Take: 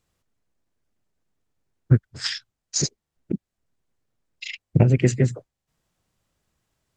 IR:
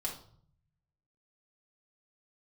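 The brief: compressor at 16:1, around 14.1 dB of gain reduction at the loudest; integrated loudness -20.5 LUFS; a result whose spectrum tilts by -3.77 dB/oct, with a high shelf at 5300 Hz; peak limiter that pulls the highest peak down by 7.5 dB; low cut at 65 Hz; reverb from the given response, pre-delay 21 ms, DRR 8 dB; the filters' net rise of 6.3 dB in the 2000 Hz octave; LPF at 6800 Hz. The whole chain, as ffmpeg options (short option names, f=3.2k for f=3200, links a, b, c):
-filter_complex "[0:a]highpass=65,lowpass=6.8k,equalizer=f=2k:t=o:g=6.5,highshelf=f=5.3k:g=6,acompressor=threshold=-24dB:ratio=16,alimiter=limit=-20.5dB:level=0:latency=1,asplit=2[a][b];[1:a]atrim=start_sample=2205,adelay=21[c];[b][c]afir=irnorm=-1:irlink=0,volume=-9.5dB[d];[a][d]amix=inputs=2:normalize=0,volume=13.5dB"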